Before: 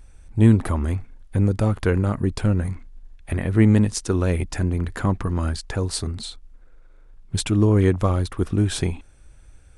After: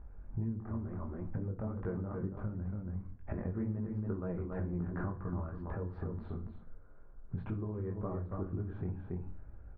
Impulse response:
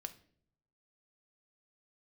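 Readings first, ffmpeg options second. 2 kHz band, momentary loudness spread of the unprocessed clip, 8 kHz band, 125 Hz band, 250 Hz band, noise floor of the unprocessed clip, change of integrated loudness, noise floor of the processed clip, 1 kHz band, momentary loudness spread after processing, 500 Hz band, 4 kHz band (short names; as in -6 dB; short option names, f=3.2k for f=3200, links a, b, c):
-21.0 dB, 13 LU, under -40 dB, -17.0 dB, -17.0 dB, -48 dBFS, -17.5 dB, -52 dBFS, -16.0 dB, 7 LU, -16.5 dB, under -40 dB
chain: -filter_complex "[0:a]lowpass=f=1.4k:w=0.5412,lowpass=f=1.4k:w=1.3066,flanger=delay=17:depth=6.2:speed=2.1,asplit=2[a][b];[b]adelay=279.9,volume=-8dB,highshelf=f=4k:g=-6.3[c];[a][c]amix=inputs=2:normalize=0,acompressor=threshold=-35dB:ratio=16[d];[1:a]atrim=start_sample=2205[e];[d][e]afir=irnorm=-1:irlink=0,volume=4.5dB"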